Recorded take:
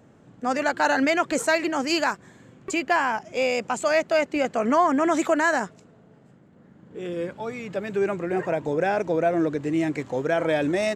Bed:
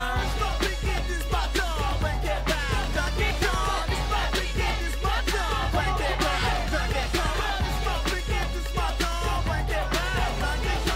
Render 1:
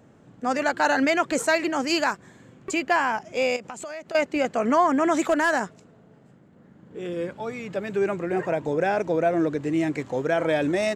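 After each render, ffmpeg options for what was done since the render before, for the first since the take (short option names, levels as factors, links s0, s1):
-filter_complex "[0:a]asettb=1/sr,asplit=3[s0][s1][s2];[s0]atrim=end=3.564[s3];[s1]atrim=start=3.56:end=4.15,asetpts=PTS-STARTPTS,afade=t=in:d=0.004:c=qsin,afade=t=out:st=0.586:d=0.004:c=qsin,acompressor=threshold=0.0251:ratio=12:attack=3.2:release=140:knee=1:detection=peak[s4];[s2]atrim=start=4.146[s5];[s3][s4]acrossfade=d=0.004:c1=hsin:c2=qsin[s6];[s6][s5]acrossfade=d=0.004:c1=qsin:c2=hsin,asettb=1/sr,asplit=3[s7][s8][s9];[s7]atrim=end=5.174[s10];[s8]atrim=start=5.17:end=5.59,asetpts=PTS-STARTPTS,afade=t=in:d=0.004:c=qsin,afade=t=out:st=0.416:d=0.004:c=qsin,asoftclip=type=hard:threshold=0.188[s11];[s9]atrim=start=5.586[s12];[s10][s11]acrossfade=d=0.004:c1=hsin:c2=qsin[s13];[s13][s12]acrossfade=d=0.004:c1=qsin:c2=hsin"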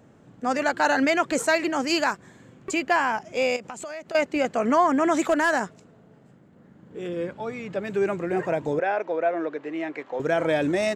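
-filter_complex "[0:a]asettb=1/sr,asplit=3[s0][s1][s2];[s0]atrim=end=7.084[s3];[s1]atrim=start=7.08:end=7.85,asetpts=PTS-STARTPTS,afade=t=in:d=0.004:c=qsin,afade=t=out:st=0.766:d=0.004:c=qsin,highshelf=f=6500:g=-8[s4];[s2]atrim=start=7.846[s5];[s3][s4]acrossfade=d=0.004:c1=hsin:c2=qsin[s6];[s6][s5]acrossfade=d=0.004:c1=qsin:c2=hsin,asettb=1/sr,asplit=3[s7][s8][s9];[s7]atrim=end=8.794[s10];[s8]atrim=start=8.79:end=10.2,asetpts=PTS-STARTPTS,afade=t=in:d=0.004:c=qsin,afade=t=out:st=1.406:d=0.004:c=qsin,highpass=470,lowpass=2800[s11];[s9]atrim=start=10.196[s12];[s10][s11]acrossfade=d=0.004:c1=hsin:c2=qsin[s13];[s13][s12]acrossfade=d=0.004:c1=qsin:c2=hsin"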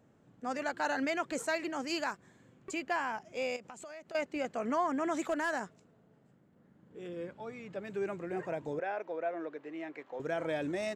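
-af "volume=0.266"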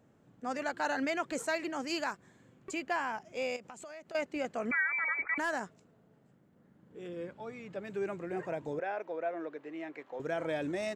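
-filter_complex "[0:a]asettb=1/sr,asplit=3[s0][s1][s2];[s0]atrim=end=4.714[s3];[s1]atrim=start=4.71:end=5.38,asetpts=PTS-STARTPTS,afade=t=in:d=0.004:c=qsin,afade=t=out:st=0.666:d=0.004:c=qsin,lowpass=f=2200:t=q:w=0.5098,lowpass=f=2200:t=q:w=0.6013,lowpass=f=2200:t=q:w=0.9,lowpass=f=2200:t=q:w=2.563,afreqshift=-2600[s4];[s2]atrim=start=5.376[s5];[s3][s4]acrossfade=d=0.004:c1=hsin:c2=qsin[s6];[s6][s5]acrossfade=d=0.004:c1=qsin:c2=hsin"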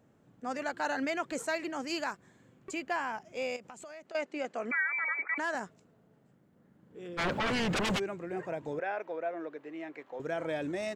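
-filter_complex "[0:a]asettb=1/sr,asplit=3[s0][s1][s2];[s0]atrim=end=4.064[s3];[s1]atrim=start=4.06:end=5.55,asetpts=PTS-STARTPTS,afade=t=in:d=0.004:c=qsin,afade=t=out:st=1.486:d=0.004:c=qsin,highpass=250,lowpass=7900[s4];[s2]atrim=start=5.546[s5];[s3][s4]acrossfade=d=0.004:c1=hsin:c2=qsin[s6];[s6][s5]acrossfade=d=0.004:c1=qsin:c2=hsin,asplit=3[s7][s8][s9];[s7]afade=t=out:st=7.17:d=0.02[s10];[s8]aeval=exprs='0.0447*sin(PI/2*7.94*val(0)/0.0447)':c=same,afade=t=in:st=7.17:d=0.02,afade=t=out:st=7.98:d=0.02[s11];[s9]afade=t=in:st=7.98:d=0.02[s12];[s10][s11][s12]amix=inputs=3:normalize=0,asettb=1/sr,asplit=3[s13][s14][s15];[s13]atrim=end=8.634[s16];[s14]atrim=start=8.63:end=9.19,asetpts=PTS-STARTPTS,afade=t=in:d=0.004:c=qsin,afade=t=out:st=0.556:d=0.004:c=qsin,equalizer=f=1900:t=o:w=2:g=3.5[s17];[s15]atrim=start=9.186[s18];[s16][s17]acrossfade=d=0.004:c1=hsin:c2=qsin[s19];[s19][s18]acrossfade=d=0.004:c1=qsin:c2=hsin"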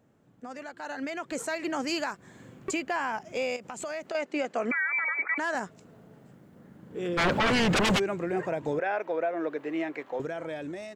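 -af "alimiter=level_in=2.66:limit=0.0631:level=0:latency=1:release=330,volume=0.376,dynaudnorm=f=350:g=7:m=3.98"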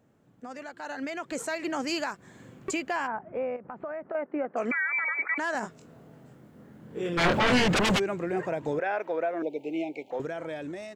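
-filter_complex "[0:a]asplit=3[s0][s1][s2];[s0]afade=t=out:st=3.06:d=0.02[s3];[s1]lowpass=f=1600:w=0.5412,lowpass=f=1600:w=1.3066,afade=t=in:st=3.06:d=0.02,afade=t=out:st=4.56:d=0.02[s4];[s2]afade=t=in:st=4.56:d=0.02[s5];[s3][s4][s5]amix=inputs=3:normalize=0,asettb=1/sr,asplit=3[s6][s7][s8];[s6]atrim=end=5.604[s9];[s7]atrim=start=5.6:end=7.68,asetpts=PTS-STARTPTS,afade=t=in:d=0.004:c=qsin,afade=t=out:st=2.076:d=0.004:c=qsin,asplit=2[s10][s11];[s11]adelay=24,volume=0.668[s12];[s10][s12]amix=inputs=2:normalize=0,atrim=end_sample=91728[s13];[s8]atrim=start=7.676[s14];[s9][s13]acrossfade=d=0.004:c1=hsin:c2=qsin[s15];[s15][s14]acrossfade=d=0.004:c1=qsin:c2=hsin,asettb=1/sr,asplit=3[s16][s17][s18];[s16]atrim=end=9.424[s19];[s17]atrim=start=9.42:end=10.11,asetpts=PTS-STARTPTS,afade=t=in:d=0.004:c=qsin,afade=t=out:st=0.686:d=0.004:c=qsin,asuperstop=centerf=1400:order=20:qfactor=1.1[s20];[s18]atrim=start=10.106[s21];[s19][s20]acrossfade=d=0.004:c1=hsin:c2=qsin[s22];[s22][s21]acrossfade=d=0.004:c1=qsin:c2=hsin"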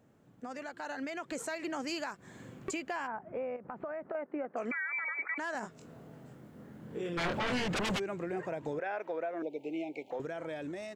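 -af "acompressor=threshold=0.0112:ratio=2"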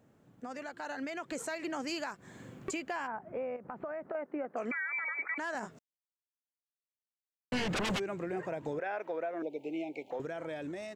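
-filter_complex "[0:a]asplit=3[s0][s1][s2];[s0]atrim=end=5.79,asetpts=PTS-STARTPTS,afade=t=out:st=5.786:d=0.004:c=hsin[s3];[s1]atrim=start=5.79:end=7.52,asetpts=PTS-STARTPTS,volume=0[s4];[s2]atrim=start=7.52,asetpts=PTS-STARTPTS,afade=t=in:d=0.004:c=hsin[s5];[s3][s4][s5]concat=n=3:v=0:a=1"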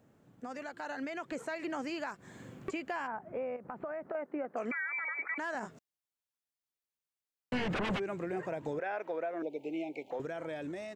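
-filter_complex "[0:a]acrossover=split=3100[s0][s1];[s1]acompressor=threshold=0.002:ratio=4:attack=1:release=60[s2];[s0][s2]amix=inputs=2:normalize=0"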